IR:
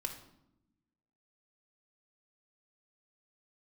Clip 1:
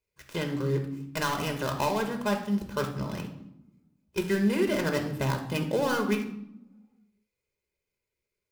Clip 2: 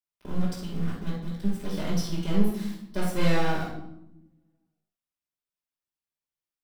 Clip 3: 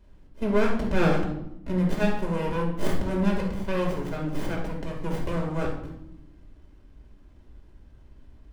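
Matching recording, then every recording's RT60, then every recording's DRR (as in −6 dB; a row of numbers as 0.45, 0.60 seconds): 1; 0.85, 0.85, 0.85 seconds; 4.5, −9.0, −2.0 decibels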